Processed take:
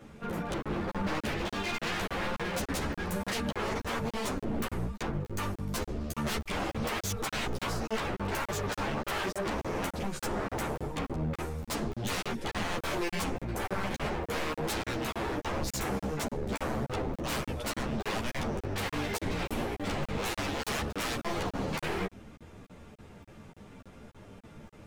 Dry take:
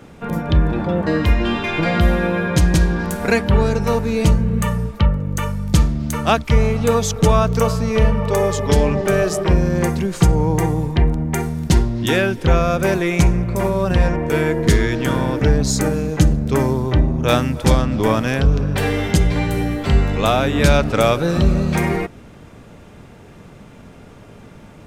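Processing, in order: wavefolder -19 dBFS; crackling interface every 0.29 s, samples 2048, zero, from 0.61 s; three-phase chorus; trim -5.5 dB

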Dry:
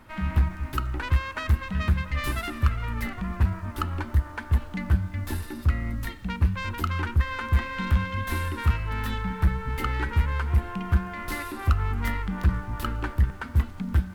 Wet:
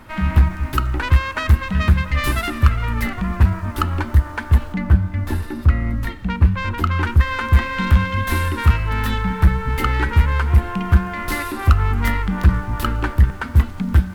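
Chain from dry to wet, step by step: 4.72–7.00 s: treble shelf 2.5 kHz -> 4.3 kHz -9.5 dB; trim +8.5 dB

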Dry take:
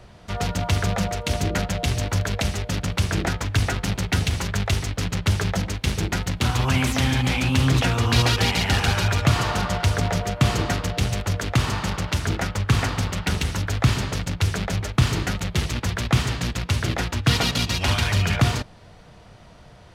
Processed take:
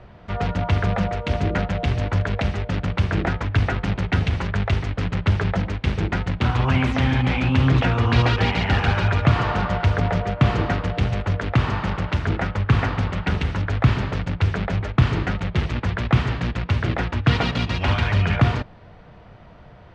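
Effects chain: low-pass 2.4 kHz 12 dB/octave; trim +2 dB

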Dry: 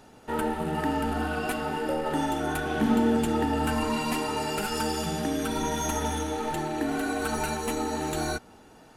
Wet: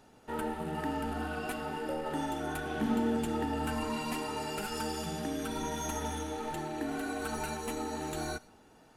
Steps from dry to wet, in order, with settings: on a send: amplifier tone stack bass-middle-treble 10-0-10 + reverberation RT60 0.45 s, pre-delay 55 ms, DRR 23.5 dB; on the sum: trim -7 dB

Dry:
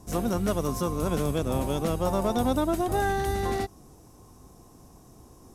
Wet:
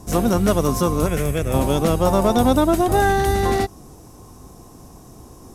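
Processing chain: 1.06–1.54 s: graphic EQ 250/1000/2000/4000 Hz -9/-11/+9/-9 dB; trim +9 dB

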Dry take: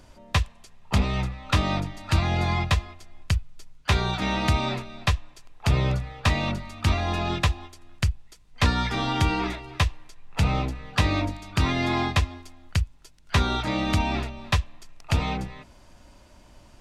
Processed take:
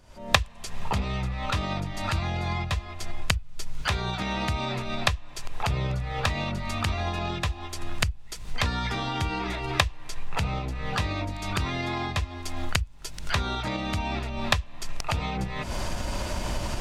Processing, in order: recorder AGC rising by 71 dB/s; peaking EQ 280 Hz -6 dB 0.31 oct; trim -6.5 dB

